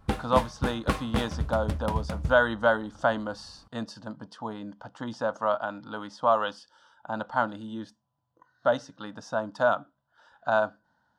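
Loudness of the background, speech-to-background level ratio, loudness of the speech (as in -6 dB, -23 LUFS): -32.5 LUFS, 3.5 dB, -29.0 LUFS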